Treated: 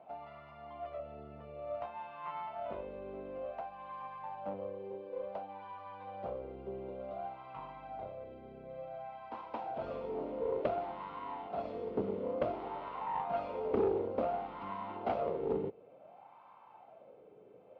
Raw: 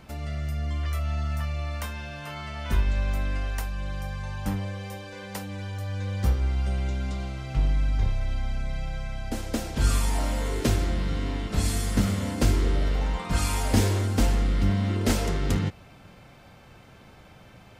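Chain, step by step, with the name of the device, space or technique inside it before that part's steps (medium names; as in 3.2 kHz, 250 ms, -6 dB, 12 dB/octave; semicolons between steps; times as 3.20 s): wah-wah guitar rig (wah-wah 0.56 Hz 420–1000 Hz, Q 7.4; valve stage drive 34 dB, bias 0.55; cabinet simulation 77–3900 Hz, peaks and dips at 88 Hz -7 dB, 1.7 kHz -8 dB, 2.6 kHz +3 dB); trim +10.5 dB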